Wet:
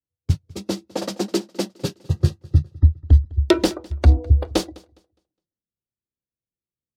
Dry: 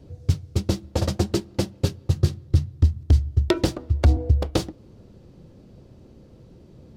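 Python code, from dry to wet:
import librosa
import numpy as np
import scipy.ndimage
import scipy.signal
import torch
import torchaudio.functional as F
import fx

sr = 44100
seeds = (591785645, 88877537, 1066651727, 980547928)

p1 = fx.noise_reduce_blind(x, sr, reduce_db=24)
p2 = p1 + fx.echo_feedback(p1, sr, ms=206, feedback_pct=45, wet_db=-19, dry=0)
p3 = fx.band_widen(p2, sr, depth_pct=70)
y = p3 * 10.0 ** (1.0 / 20.0)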